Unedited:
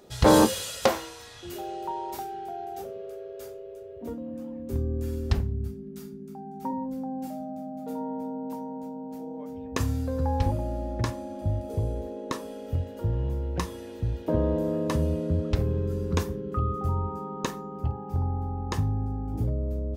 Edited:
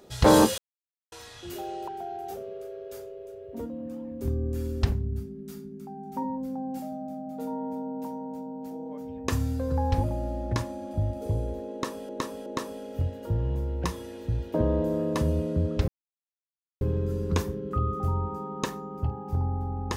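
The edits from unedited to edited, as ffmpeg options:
ffmpeg -i in.wav -filter_complex "[0:a]asplit=7[link_01][link_02][link_03][link_04][link_05][link_06][link_07];[link_01]atrim=end=0.58,asetpts=PTS-STARTPTS,afade=type=out:start_time=0.576:duration=0.004:curve=hsin[link_08];[link_02]atrim=start=0.58:end=1.12,asetpts=PTS-STARTPTS,volume=0[link_09];[link_03]atrim=start=1.12:end=1.882,asetpts=PTS-STARTPTS,afade=type=in:duration=0.004:curve=hsin[link_10];[link_04]atrim=start=2.358:end=12.572[link_11];[link_05]atrim=start=12.198:end=12.572[link_12];[link_06]atrim=start=12.198:end=15.62,asetpts=PTS-STARTPTS,afade=type=out:start_time=3.418:duration=0.004:curve=hsin,apad=pad_dur=0.93[link_13];[link_07]atrim=start=15.62,asetpts=PTS-STARTPTS,afade=type=in:duration=0.004:curve=hsin[link_14];[link_08][link_09][link_10]concat=n=3:v=0:a=1[link_15];[link_15][link_11]acrossfade=duration=0.004:curve1=hsin:curve2=hsin[link_16];[link_16][link_12]acrossfade=duration=0.004:curve1=hsin:curve2=hsin[link_17];[link_13][link_14]concat=n=2:v=0:a=1[link_18];[link_17][link_18]acrossfade=duration=0.004:curve1=hsin:curve2=hsin" out.wav

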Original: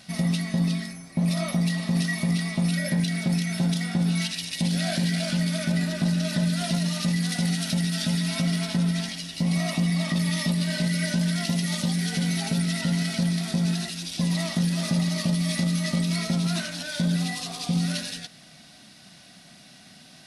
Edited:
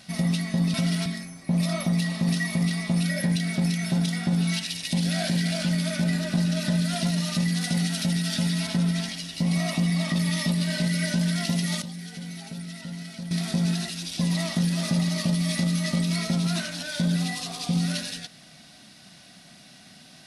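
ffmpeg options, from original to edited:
ffmpeg -i in.wav -filter_complex "[0:a]asplit=6[link_01][link_02][link_03][link_04][link_05][link_06];[link_01]atrim=end=0.742[link_07];[link_02]atrim=start=8.348:end=8.672[link_08];[link_03]atrim=start=0.738:end=8.352[link_09];[link_04]atrim=start=8.668:end=11.822[link_10];[link_05]atrim=start=11.818:end=13.312,asetpts=PTS-STARTPTS,volume=-11.5dB[link_11];[link_06]atrim=start=13.308[link_12];[link_07][link_08]acrossfade=duration=0.004:curve1=hsin:curve2=hsin[link_13];[link_13][link_09]acrossfade=duration=0.004:curve1=hsin:curve2=hsin[link_14];[link_14][link_10]acrossfade=duration=0.004:curve1=hsin:curve2=hsin[link_15];[link_15][link_11]acrossfade=duration=0.004:curve1=hsin:curve2=hsin[link_16];[link_16][link_12]acrossfade=duration=0.004:curve1=hsin:curve2=hsin" out.wav

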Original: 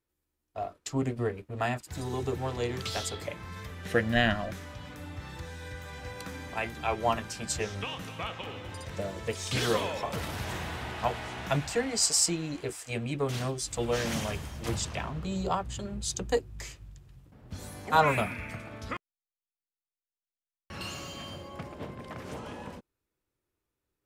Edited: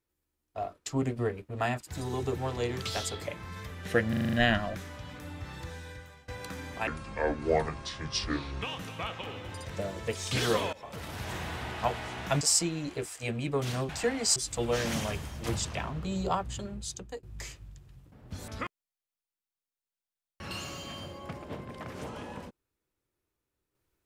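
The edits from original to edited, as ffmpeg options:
ffmpeg -i in.wav -filter_complex "[0:a]asplit=16[link_01][link_02][link_03][link_04][link_05][link_06][link_07][link_08][link_09][link_10][link_11][link_12][link_13][link_14][link_15][link_16];[link_01]atrim=end=4.132[link_17];[link_02]atrim=start=4.088:end=4.132[link_18];[link_03]atrim=start=4.088:end=4.132[link_19];[link_04]atrim=start=4.088:end=4.132[link_20];[link_05]atrim=start=4.088:end=4.132[link_21];[link_06]atrim=start=4.088:end=4.132[link_22];[link_07]atrim=start=4.088:end=6.04,asetpts=PTS-STARTPTS,afade=type=out:start_time=1.412:duration=0.54:silence=0.0891251[link_23];[link_08]atrim=start=6.04:end=6.634,asetpts=PTS-STARTPTS,afade=type=in:duration=0.004:curve=hsin:silence=0.0891251[link_24];[link_09]atrim=start=6.63:end=7.82,asetpts=PTS-STARTPTS,asetrate=29988,aresample=44100[link_25];[link_10]atrim=start=7.816:end=9.93,asetpts=PTS-STARTPTS,afade=type=out:start_time=2.11:duration=0.004:curve=hsin:silence=0.105925[link_26];[link_11]atrim=start=9.93:end=11.612,asetpts=PTS-STARTPTS,afade=type=in:duration=0.96:curve=qsin:silence=0.105925[link_27];[link_12]atrim=start=12.078:end=13.562[link_28];[link_13]atrim=start=11.608:end=12.082[link_29];[link_14]atrim=start=13.558:end=16.43,asetpts=PTS-STARTPTS,afade=type=out:start_time=2.182:duration=0.69:silence=0.0891251[link_30];[link_15]atrim=start=16.43:end=17.682,asetpts=PTS-STARTPTS,afade=type=in:duration=0.004:curve=hsin:silence=0.0891251[link_31];[link_16]atrim=start=18.778[link_32];[link_17][link_18]acrossfade=duration=0.004:curve1=hsin:curve2=hsin[link_33];[link_33][link_19]acrossfade=duration=0.004:curve1=hsin:curve2=hsin[link_34];[link_34][link_20]acrossfade=duration=0.004:curve1=hsin:curve2=hsin[link_35];[link_35][link_21]acrossfade=duration=0.004:curve1=hsin:curve2=hsin[link_36];[link_36][link_22]acrossfade=duration=0.004:curve1=hsin:curve2=hsin[link_37];[link_23][link_24]concat=n=2:v=0:a=1[link_38];[link_37][link_38]acrossfade=duration=0.004:curve1=hsin:curve2=hsin[link_39];[link_39][link_25]acrossfade=duration=0.004:curve1=hsin:curve2=hsin[link_40];[link_26][link_27]concat=n=2:v=0:a=1[link_41];[link_40][link_41]acrossfade=duration=0.004:curve1=hsin:curve2=hsin[link_42];[link_42][link_28]acrossfade=duration=0.004:curve1=hsin:curve2=hsin[link_43];[link_43][link_29]acrossfade=duration=0.004:curve1=hsin:curve2=hsin[link_44];[link_30][link_31]concat=n=2:v=0:a=1[link_45];[link_44][link_45]acrossfade=duration=0.004:curve1=hsin:curve2=hsin[link_46];[link_46][link_32]acrossfade=duration=0.004:curve1=hsin:curve2=hsin" out.wav

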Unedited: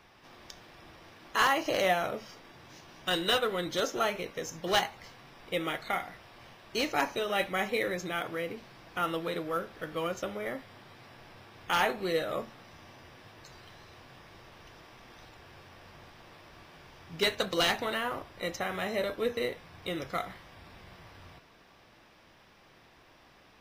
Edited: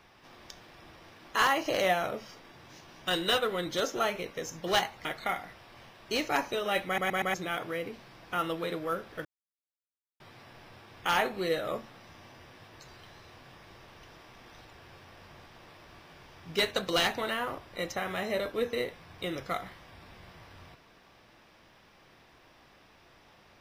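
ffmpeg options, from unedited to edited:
ffmpeg -i in.wav -filter_complex "[0:a]asplit=8[link_01][link_02][link_03][link_04][link_05][link_06][link_07][link_08];[link_01]atrim=end=5.052[link_09];[link_02]atrim=start=5.688:end=7.622[link_10];[link_03]atrim=start=7.498:end=7.622[link_11];[link_04]atrim=start=7.498:end=7.622[link_12];[link_05]atrim=start=7.498:end=7.622[link_13];[link_06]atrim=start=7.978:end=9.89,asetpts=PTS-STARTPTS,afade=type=out:start_time=1.908:duration=0.004:curve=hsin[link_14];[link_07]atrim=start=9.89:end=10.84,asetpts=PTS-STARTPTS,volume=0[link_15];[link_08]atrim=start=10.84,asetpts=PTS-STARTPTS,afade=type=in:duration=0.004:curve=hsin[link_16];[link_09][link_10]acrossfade=duration=0.004:curve1=hsin:curve2=hsin[link_17];[link_17][link_11]acrossfade=duration=0.004:curve1=hsin:curve2=hsin[link_18];[link_18][link_12]acrossfade=duration=0.004:curve1=hsin:curve2=hsin[link_19];[link_19][link_13]acrossfade=duration=0.004:curve1=hsin:curve2=hsin[link_20];[link_14][link_15][link_16]concat=n=3:v=0:a=1[link_21];[link_20][link_21]acrossfade=duration=0.004:curve1=hsin:curve2=hsin" out.wav

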